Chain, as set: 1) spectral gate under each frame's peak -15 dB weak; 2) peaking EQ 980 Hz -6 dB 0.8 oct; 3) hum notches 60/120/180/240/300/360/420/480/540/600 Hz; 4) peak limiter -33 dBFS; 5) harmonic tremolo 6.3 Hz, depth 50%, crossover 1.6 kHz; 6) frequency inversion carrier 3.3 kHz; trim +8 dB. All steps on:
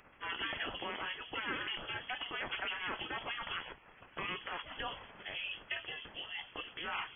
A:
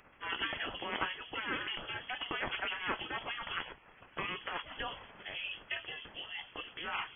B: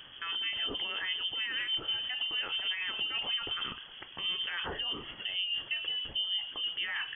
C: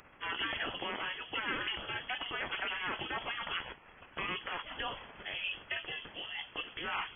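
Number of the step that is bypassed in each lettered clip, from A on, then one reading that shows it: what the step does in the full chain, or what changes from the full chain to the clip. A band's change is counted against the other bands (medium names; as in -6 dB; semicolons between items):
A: 4, crest factor change +6.0 dB; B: 1, 2 kHz band +4.0 dB; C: 5, loudness change +2.5 LU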